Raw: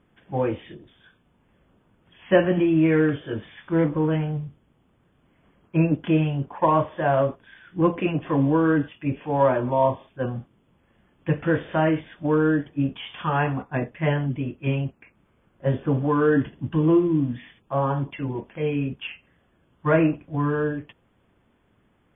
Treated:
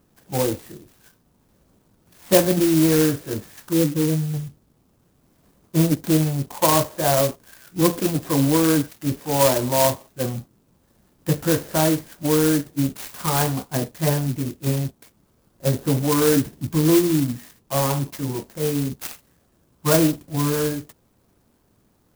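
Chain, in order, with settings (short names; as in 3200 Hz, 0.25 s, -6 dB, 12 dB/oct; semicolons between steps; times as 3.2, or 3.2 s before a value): 3.73–4.34 spectral contrast raised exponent 1.9; clock jitter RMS 0.12 ms; gain +2 dB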